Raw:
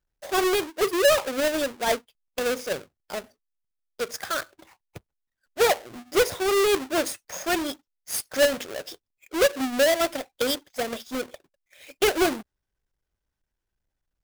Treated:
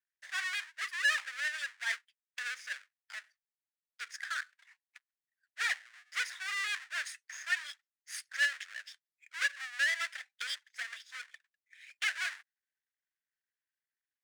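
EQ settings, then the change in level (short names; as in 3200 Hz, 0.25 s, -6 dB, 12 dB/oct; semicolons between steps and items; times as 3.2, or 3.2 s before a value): polynomial smoothing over 9 samples; ladder high-pass 1600 Hz, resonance 65%; 0.0 dB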